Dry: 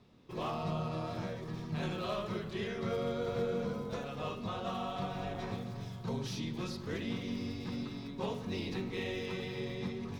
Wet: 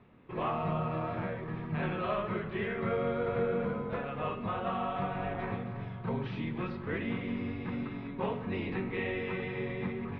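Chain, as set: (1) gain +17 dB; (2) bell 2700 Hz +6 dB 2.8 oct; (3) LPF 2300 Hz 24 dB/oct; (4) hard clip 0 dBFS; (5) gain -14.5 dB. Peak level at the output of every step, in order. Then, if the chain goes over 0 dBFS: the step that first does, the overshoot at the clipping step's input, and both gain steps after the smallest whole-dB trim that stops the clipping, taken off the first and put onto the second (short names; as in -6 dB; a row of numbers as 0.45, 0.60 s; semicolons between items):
-5.0, -4.0, -5.0, -5.0, -19.5 dBFS; no overload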